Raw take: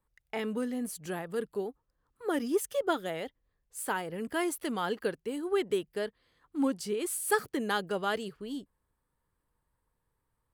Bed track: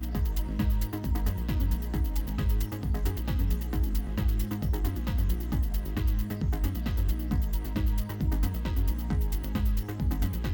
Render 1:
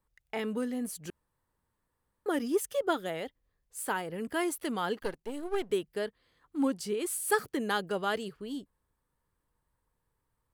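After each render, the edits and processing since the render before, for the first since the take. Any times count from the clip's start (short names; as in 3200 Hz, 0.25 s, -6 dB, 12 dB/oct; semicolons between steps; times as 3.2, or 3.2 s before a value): 1.1–2.26 room tone; 5–5.72 half-wave gain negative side -12 dB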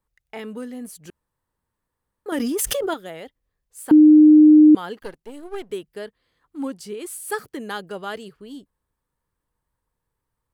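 2.32–2.94 fast leveller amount 100%; 3.91–4.75 bleep 305 Hz -6.5 dBFS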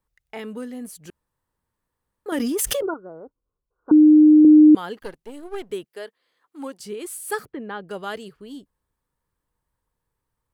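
2.82–4.45 rippled Chebyshev low-pass 1500 Hz, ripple 6 dB; 5.84–6.8 HPF 390 Hz; 7.45–7.89 air absorption 460 m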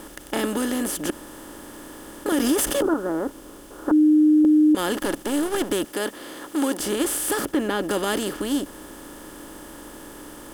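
per-bin compression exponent 0.4; limiter -12 dBFS, peak gain reduction 8.5 dB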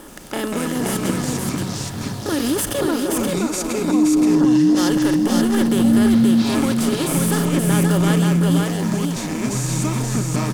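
echoes that change speed 80 ms, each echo -5 st, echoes 3; echo 0.525 s -3 dB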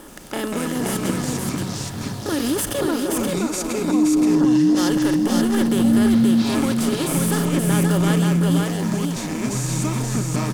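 gain -1.5 dB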